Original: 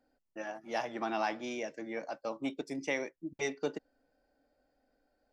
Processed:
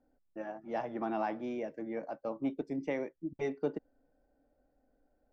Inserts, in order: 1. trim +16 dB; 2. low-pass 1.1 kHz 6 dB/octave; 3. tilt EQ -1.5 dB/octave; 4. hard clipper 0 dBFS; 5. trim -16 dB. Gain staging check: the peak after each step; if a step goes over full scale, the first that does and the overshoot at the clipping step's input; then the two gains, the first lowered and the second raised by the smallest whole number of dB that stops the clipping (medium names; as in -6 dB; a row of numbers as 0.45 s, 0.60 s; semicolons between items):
-4.0 dBFS, -6.5 dBFS, -5.0 dBFS, -5.0 dBFS, -21.0 dBFS; nothing clips